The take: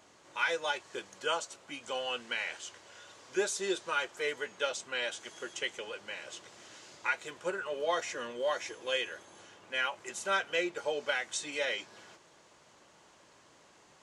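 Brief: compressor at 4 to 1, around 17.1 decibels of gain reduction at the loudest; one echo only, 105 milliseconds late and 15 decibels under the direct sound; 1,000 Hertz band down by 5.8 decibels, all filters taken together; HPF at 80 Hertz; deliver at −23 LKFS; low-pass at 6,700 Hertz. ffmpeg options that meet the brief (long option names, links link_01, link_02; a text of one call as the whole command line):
ffmpeg -i in.wav -af "highpass=80,lowpass=6700,equalizer=frequency=1000:width_type=o:gain=-8.5,acompressor=threshold=-49dB:ratio=4,aecho=1:1:105:0.178,volume=27dB" out.wav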